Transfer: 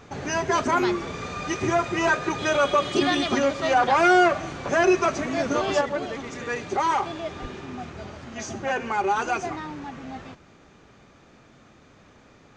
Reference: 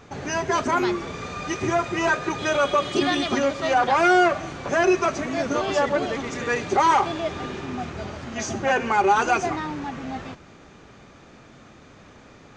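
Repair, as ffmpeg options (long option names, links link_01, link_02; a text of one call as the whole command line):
ffmpeg -i in.wav -filter_complex "[0:a]asplit=3[link_01][link_02][link_03];[link_01]afade=type=out:start_time=7.41:duration=0.02[link_04];[link_02]highpass=frequency=140:width=0.5412,highpass=frequency=140:width=1.3066,afade=type=in:start_time=7.41:duration=0.02,afade=type=out:start_time=7.53:duration=0.02[link_05];[link_03]afade=type=in:start_time=7.53:duration=0.02[link_06];[link_04][link_05][link_06]amix=inputs=3:normalize=0,asetnsamples=nb_out_samples=441:pad=0,asendcmd='5.81 volume volume 5dB',volume=0dB" out.wav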